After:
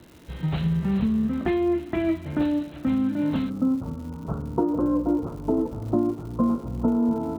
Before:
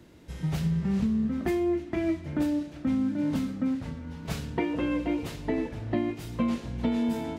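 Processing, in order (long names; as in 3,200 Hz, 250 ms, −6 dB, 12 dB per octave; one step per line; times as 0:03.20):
Chebyshev low-pass with heavy ripple 4,100 Hz, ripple 3 dB, from 0:03.49 1,400 Hz
surface crackle 270 per second −47 dBFS
level +6 dB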